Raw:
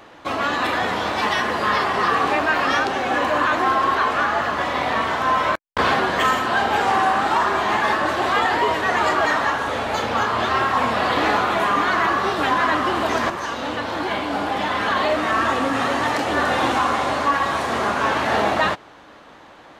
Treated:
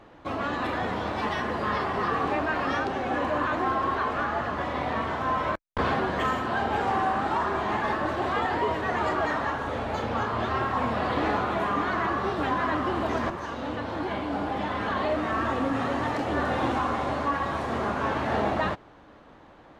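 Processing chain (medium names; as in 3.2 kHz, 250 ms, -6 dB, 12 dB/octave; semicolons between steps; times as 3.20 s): tilt EQ -2.5 dB/octave; trim -8 dB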